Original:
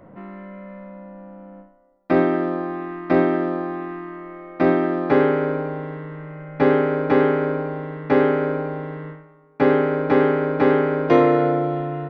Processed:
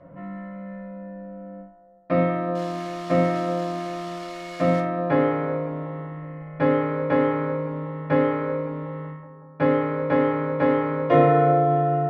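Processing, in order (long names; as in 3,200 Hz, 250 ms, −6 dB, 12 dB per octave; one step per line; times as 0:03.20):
0:02.55–0:04.80: spike at every zero crossing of −18.5 dBFS
low-pass filter 3,800 Hz 12 dB per octave
notch comb filter 390 Hz
bucket-brigade delay 186 ms, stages 2,048, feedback 73%, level −14 dB
convolution reverb RT60 0.35 s, pre-delay 6 ms, DRR 1 dB
level −4.5 dB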